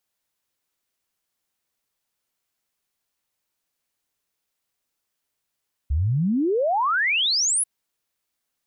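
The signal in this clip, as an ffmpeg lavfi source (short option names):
-f lavfi -i "aevalsrc='0.119*clip(min(t,1.74-t)/0.01,0,1)*sin(2*PI*65*1.74/log(11000/65)*(exp(log(11000/65)*t/1.74)-1))':d=1.74:s=44100"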